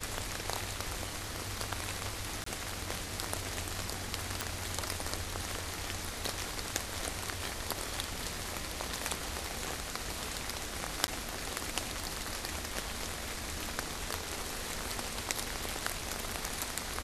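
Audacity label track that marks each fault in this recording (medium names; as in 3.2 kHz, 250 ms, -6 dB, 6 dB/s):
2.440000	2.460000	dropout 24 ms
4.410000	4.410000	pop
11.070000	11.080000	dropout 10 ms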